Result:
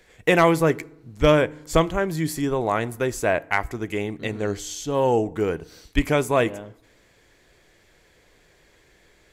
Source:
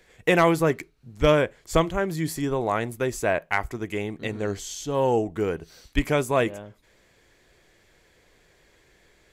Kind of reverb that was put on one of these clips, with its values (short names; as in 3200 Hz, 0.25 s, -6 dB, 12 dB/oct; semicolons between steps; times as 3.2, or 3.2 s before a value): FDN reverb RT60 0.84 s, low-frequency decay 1.2×, high-frequency decay 0.6×, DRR 20 dB; gain +2 dB